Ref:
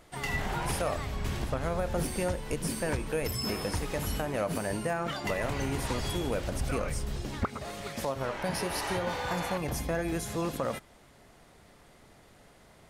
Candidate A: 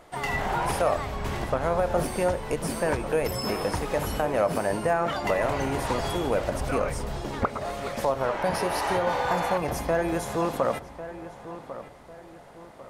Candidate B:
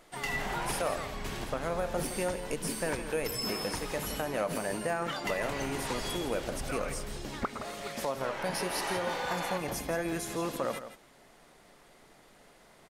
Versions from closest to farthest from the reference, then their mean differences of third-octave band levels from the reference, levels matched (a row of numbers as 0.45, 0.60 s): B, A; 2.5, 4.0 dB